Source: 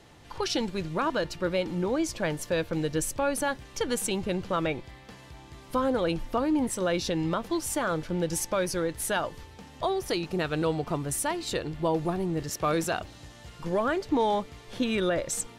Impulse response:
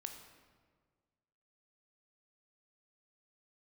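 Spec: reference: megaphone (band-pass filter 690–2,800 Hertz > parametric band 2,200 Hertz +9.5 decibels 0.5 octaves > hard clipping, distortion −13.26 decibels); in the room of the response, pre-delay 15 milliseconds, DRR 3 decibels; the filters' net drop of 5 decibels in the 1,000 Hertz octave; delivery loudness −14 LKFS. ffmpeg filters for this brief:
-filter_complex "[0:a]equalizer=frequency=1000:width_type=o:gain=-5.5,asplit=2[link_01][link_02];[1:a]atrim=start_sample=2205,adelay=15[link_03];[link_02][link_03]afir=irnorm=-1:irlink=0,volume=0.5dB[link_04];[link_01][link_04]amix=inputs=2:normalize=0,highpass=690,lowpass=2800,equalizer=frequency=2200:width_type=o:width=0.5:gain=9.5,asoftclip=type=hard:threshold=-26.5dB,volume=20.5dB"

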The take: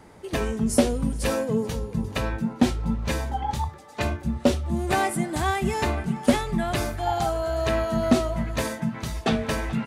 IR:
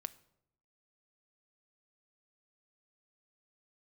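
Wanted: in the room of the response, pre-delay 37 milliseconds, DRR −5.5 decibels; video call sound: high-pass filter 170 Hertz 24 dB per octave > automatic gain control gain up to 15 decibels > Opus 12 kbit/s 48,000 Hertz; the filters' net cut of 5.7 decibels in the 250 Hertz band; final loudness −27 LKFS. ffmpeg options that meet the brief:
-filter_complex "[0:a]equalizer=frequency=250:width_type=o:gain=-6,asplit=2[link_01][link_02];[1:a]atrim=start_sample=2205,adelay=37[link_03];[link_02][link_03]afir=irnorm=-1:irlink=0,volume=8.5dB[link_04];[link_01][link_04]amix=inputs=2:normalize=0,highpass=frequency=170:width=0.5412,highpass=frequency=170:width=1.3066,dynaudnorm=maxgain=15dB,volume=-4dB" -ar 48000 -c:a libopus -b:a 12k

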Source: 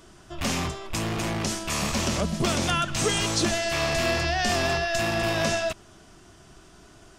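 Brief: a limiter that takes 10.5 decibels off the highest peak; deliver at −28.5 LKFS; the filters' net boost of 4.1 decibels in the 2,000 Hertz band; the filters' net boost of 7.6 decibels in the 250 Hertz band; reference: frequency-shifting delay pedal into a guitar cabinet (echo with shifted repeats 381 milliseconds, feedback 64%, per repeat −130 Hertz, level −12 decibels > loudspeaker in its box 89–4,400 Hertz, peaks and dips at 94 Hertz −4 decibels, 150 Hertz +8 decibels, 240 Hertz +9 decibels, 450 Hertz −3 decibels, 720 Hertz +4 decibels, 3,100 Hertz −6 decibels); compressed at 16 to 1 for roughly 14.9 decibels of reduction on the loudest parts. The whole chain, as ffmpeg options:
ffmpeg -i in.wav -filter_complex "[0:a]equalizer=frequency=250:width_type=o:gain=3,equalizer=frequency=2000:width_type=o:gain=6,acompressor=threshold=-33dB:ratio=16,alimiter=level_in=8dB:limit=-24dB:level=0:latency=1,volume=-8dB,asplit=9[link_01][link_02][link_03][link_04][link_05][link_06][link_07][link_08][link_09];[link_02]adelay=381,afreqshift=-130,volume=-12dB[link_10];[link_03]adelay=762,afreqshift=-260,volume=-15.9dB[link_11];[link_04]adelay=1143,afreqshift=-390,volume=-19.8dB[link_12];[link_05]adelay=1524,afreqshift=-520,volume=-23.6dB[link_13];[link_06]adelay=1905,afreqshift=-650,volume=-27.5dB[link_14];[link_07]adelay=2286,afreqshift=-780,volume=-31.4dB[link_15];[link_08]adelay=2667,afreqshift=-910,volume=-35.3dB[link_16];[link_09]adelay=3048,afreqshift=-1040,volume=-39.1dB[link_17];[link_01][link_10][link_11][link_12][link_13][link_14][link_15][link_16][link_17]amix=inputs=9:normalize=0,highpass=89,equalizer=frequency=94:width_type=q:width=4:gain=-4,equalizer=frequency=150:width_type=q:width=4:gain=8,equalizer=frequency=240:width_type=q:width=4:gain=9,equalizer=frequency=450:width_type=q:width=4:gain=-3,equalizer=frequency=720:width_type=q:width=4:gain=4,equalizer=frequency=3100:width_type=q:width=4:gain=-6,lowpass=frequency=4400:width=0.5412,lowpass=frequency=4400:width=1.3066,volume=10.5dB" out.wav

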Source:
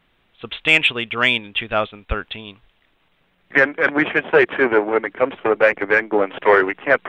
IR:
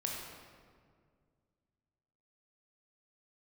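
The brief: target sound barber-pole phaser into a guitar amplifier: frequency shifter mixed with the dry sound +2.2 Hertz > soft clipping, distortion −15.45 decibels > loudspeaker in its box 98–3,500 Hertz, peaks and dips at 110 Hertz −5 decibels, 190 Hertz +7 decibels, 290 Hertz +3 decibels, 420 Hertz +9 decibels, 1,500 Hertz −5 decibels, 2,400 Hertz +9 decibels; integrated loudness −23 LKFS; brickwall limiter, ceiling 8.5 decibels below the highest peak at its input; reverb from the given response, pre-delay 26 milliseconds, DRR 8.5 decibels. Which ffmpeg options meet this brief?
-filter_complex "[0:a]alimiter=limit=-10.5dB:level=0:latency=1,asplit=2[link_01][link_02];[1:a]atrim=start_sample=2205,adelay=26[link_03];[link_02][link_03]afir=irnorm=-1:irlink=0,volume=-10.5dB[link_04];[link_01][link_04]amix=inputs=2:normalize=0,asplit=2[link_05][link_06];[link_06]afreqshift=2.2[link_07];[link_05][link_07]amix=inputs=2:normalize=1,asoftclip=threshold=-17dB,highpass=98,equalizer=frequency=110:width_type=q:width=4:gain=-5,equalizer=frequency=190:width_type=q:width=4:gain=7,equalizer=frequency=290:width_type=q:width=4:gain=3,equalizer=frequency=420:width_type=q:width=4:gain=9,equalizer=frequency=1500:width_type=q:width=4:gain=-5,equalizer=frequency=2400:width_type=q:width=4:gain=9,lowpass=frequency=3500:width=0.5412,lowpass=frequency=3500:width=1.3066,volume=-0.5dB"

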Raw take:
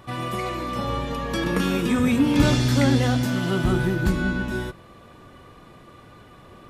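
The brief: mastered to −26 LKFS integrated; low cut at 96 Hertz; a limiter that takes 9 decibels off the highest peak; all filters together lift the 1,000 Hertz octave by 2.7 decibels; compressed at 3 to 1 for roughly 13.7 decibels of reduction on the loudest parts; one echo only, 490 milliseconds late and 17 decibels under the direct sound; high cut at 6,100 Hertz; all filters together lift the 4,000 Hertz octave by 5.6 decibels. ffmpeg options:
ffmpeg -i in.wav -af "highpass=96,lowpass=6100,equalizer=frequency=1000:width_type=o:gain=3,equalizer=frequency=4000:width_type=o:gain=7.5,acompressor=threshold=-33dB:ratio=3,alimiter=level_in=4dB:limit=-24dB:level=0:latency=1,volume=-4dB,aecho=1:1:490:0.141,volume=11.5dB" out.wav

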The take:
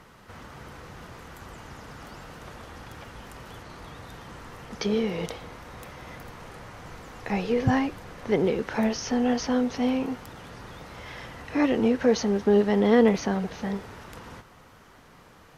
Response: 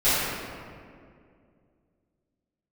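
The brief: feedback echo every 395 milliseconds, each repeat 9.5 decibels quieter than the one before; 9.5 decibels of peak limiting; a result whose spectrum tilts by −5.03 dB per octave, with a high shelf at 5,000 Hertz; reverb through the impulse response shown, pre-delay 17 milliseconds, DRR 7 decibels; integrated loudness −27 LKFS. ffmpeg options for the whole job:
-filter_complex "[0:a]highshelf=frequency=5000:gain=5.5,alimiter=limit=-17.5dB:level=0:latency=1,aecho=1:1:395|790|1185|1580:0.335|0.111|0.0365|0.012,asplit=2[link_01][link_02];[1:a]atrim=start_sample=2205,adelay=17[link_03];[link_02][link_03]afir=irnorm=-1:irlink=0,volume=-25dB[link_04];[link_01][link_04]amix=inputs=2:normalize=0,volume=0.5dB"

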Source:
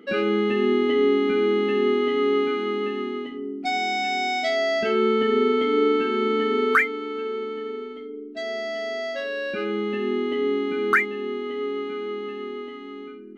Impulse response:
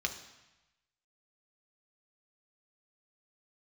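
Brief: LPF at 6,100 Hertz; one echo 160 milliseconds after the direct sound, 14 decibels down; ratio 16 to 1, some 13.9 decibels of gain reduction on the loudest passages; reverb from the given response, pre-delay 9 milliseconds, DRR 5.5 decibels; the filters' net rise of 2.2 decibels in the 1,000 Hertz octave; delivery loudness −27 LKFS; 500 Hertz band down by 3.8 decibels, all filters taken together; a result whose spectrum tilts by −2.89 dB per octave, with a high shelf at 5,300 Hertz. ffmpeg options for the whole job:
-filter_complex "[0:a]lowpass=6100,equalizer=frequency=500:width_type=o:gain=-6,equalizer=frequency=1000:width_type=o:gain=6,highshelf=frequency=5300:gain=-8,acompressor=threshold=-26dB:ratio=16,aecho=1:1:160:0.2,asplit=2[link_01][link_02];[1:a]atrim=start_sample=2205,adelay=9[link_03];[link_02][link_03]afir=irnorm=-1:irlink=0,volume=-9.5dB[link_04];[link_01][link_04]amix=inputs=2:normalize=0,volume=3.5dB"

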